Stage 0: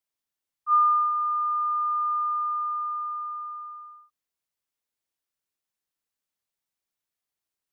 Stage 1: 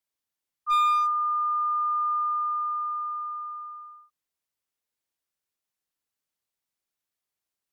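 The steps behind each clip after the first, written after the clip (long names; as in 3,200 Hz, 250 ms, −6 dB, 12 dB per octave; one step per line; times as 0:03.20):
asymmetric clip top −21.5 dBFS, bottom −17.5 dBFS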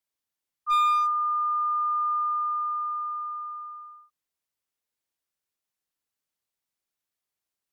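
no processing that can be heard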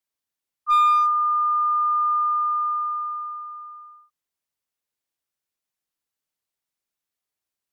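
dynamic equaliser 1,100 Hz, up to +5 dB, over −33 dBFS, Q 0.84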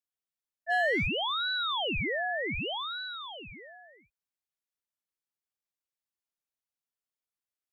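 ring modulator whose carrier an LFO sweeps 1,600 Hz, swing 70%, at 0.66 Hz
level −7 dB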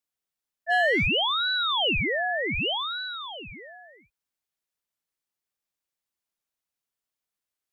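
dynamic equaliser 2,900 Hz, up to +5 dB, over −46 dBFS, Q 3.6
level +4.5 dB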